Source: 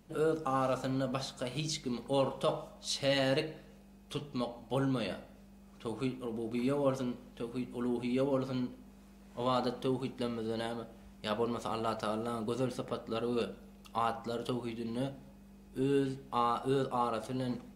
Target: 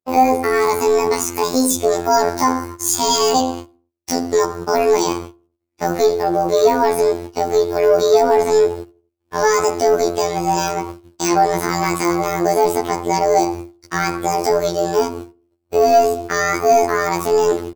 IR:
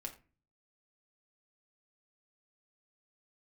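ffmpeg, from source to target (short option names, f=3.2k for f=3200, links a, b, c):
-filter_complex "[0:a]agate=range=-56dB:threshold=-50dB:ratio=16:detection=peak,equalizer=f=1.1k:w=4:g=-4,acrossover=split=400|3000[a][b][c];[b]acompressor=threshold=-52dB:ratio=2[d];[a][d][c]amix=inputs=3:normalize=0,acrossover=split=280[e][f];[e]asoftclip=type=tanh:threshold=-40dB[g];[g][f]amix=inputs=2:normalize=0,asetrate=74167,aresample=44100,atempo=0.594604,asoftclip=type=hard:threshold=-27.5dB,afftfilt=real='hypot(re,im)*cos(PI*b)':imag='0':win_size=2048:overlap=0.75,apsyclip=29dB,asplit=2[h][i];[i]adelay=84,lowpass=f=1k:p=1,volume=-23dB,asplit=2[j][k];[k]adelay=84,lowpass=f=1k:p=1,volume=0.44,asplit=2[l][m];[m]adelay=84,lowpass=f=1k:p=1,volume=0.44[n];[j][l][n]amix=inputs=3:normalize=0[o];[h][o]amix=inputs=2:normalize=0,volume=-2dB"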